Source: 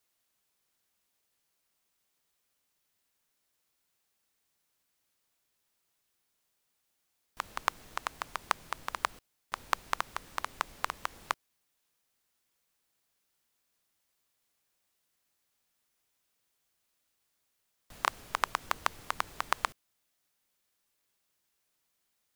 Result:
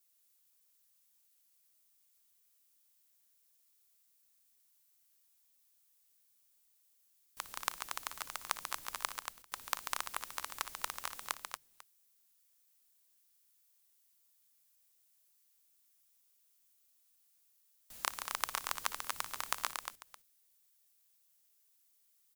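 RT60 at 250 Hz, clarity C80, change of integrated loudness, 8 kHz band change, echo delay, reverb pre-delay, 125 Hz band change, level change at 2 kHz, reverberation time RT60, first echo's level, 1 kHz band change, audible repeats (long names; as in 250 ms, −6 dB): no reverb audible, no reverb audible, −4.0 dB, +4.5 dB, 58 ms, no reverb audible, −10.0 dB, −5.5 dB, no reverb audible, −17.5 dB, −7.0 dB, 4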